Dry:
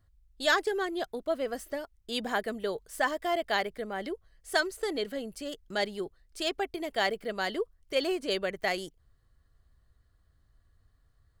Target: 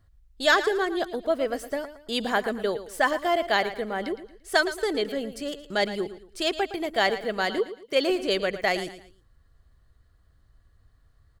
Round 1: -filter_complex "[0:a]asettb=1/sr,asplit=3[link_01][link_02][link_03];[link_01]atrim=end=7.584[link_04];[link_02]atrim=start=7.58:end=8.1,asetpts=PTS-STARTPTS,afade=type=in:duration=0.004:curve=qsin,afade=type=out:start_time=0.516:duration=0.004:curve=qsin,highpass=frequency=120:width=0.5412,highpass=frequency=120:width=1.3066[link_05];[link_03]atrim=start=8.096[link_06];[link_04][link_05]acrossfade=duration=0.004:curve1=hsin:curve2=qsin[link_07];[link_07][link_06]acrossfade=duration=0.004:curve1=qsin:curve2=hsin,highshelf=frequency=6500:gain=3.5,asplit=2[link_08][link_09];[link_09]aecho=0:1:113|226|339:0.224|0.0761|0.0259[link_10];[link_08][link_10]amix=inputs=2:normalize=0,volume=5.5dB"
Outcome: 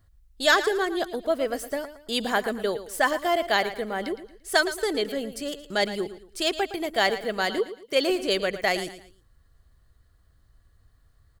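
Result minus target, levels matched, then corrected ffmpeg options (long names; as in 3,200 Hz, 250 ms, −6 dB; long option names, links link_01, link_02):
8,000 Hz band +4.0 dB
-filter_complex "[0:a]asettb=1/sr,asplit=3[link_01][link_02][link_03];[link_01]atrim=end=7.584[link_04];[link_02]atrim=start=7.58:end=8.1,asetpts=PTS-STARTPTS,afade=type=in:duration=0.004:curve=qsin,afade=type=out:start_time=0.516:duration=0.004:curve=qsin,highpass=frequency=120:width=0.5412,highpass=frequency=120:width=1.3066[link_05];[link_03]atrim=start=8.096[link_06];[link_04][link_05]acrossfade=duration=0.004:curve1=hsin:curve2=qsin[link_07];[link_07][link_06]acrossfade=duration=0.004:curve1=qsin:curve2=hsin,highshelf=frequency=6500:gain=-4,asplit=2[link_08][link_09];[link_09]aecho=0:1:113|226|339:0.224|0.0761|0.0259[link_10];[link_08][link_10]amix=inputs=2:normalize=0,volume=5.5dB"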